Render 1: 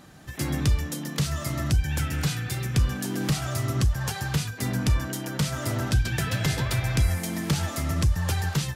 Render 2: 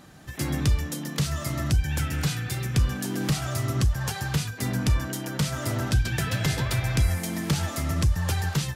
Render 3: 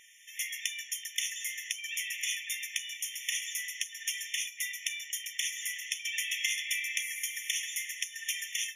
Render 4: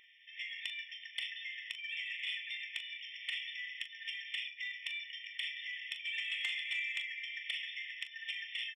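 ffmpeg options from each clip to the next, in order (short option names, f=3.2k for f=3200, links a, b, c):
-af anull
-af "afftfilt=real='re*eq(mod(floor(b*sr/1024/1800),2),1)':imag='im*eq(mod(floor(b*sr/1024/1800),2),1)':win_size=1024:overlap=0.75,volume=3.5dB"
-filter_complex "[0:a]aresample=11025,aresample=44100,asoftclip=type=tanh:threshold=-23.5dB,asplit=2[a][b];[b]aecho=0:1:26|40:0.158|0.282[c];[a][c]amix=inputs=2:normalize=0,volume=-3dB"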